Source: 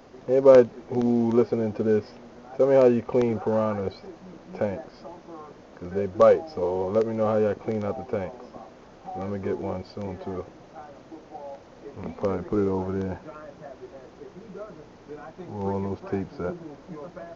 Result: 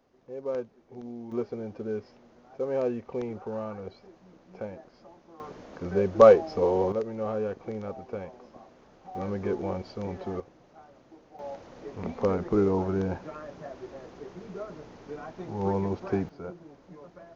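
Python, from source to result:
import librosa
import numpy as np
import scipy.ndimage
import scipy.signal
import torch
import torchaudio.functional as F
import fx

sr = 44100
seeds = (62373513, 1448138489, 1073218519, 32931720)

y = fx.gain(x, sr, db=fx.steps((0.0, -18.0), (1.32, -10.5), (5.4, 2.0), (6.92, -7.5), (9.15, -1.0), (10.4, -9.5), (11.39, 0.5), (16.29, -9.0)))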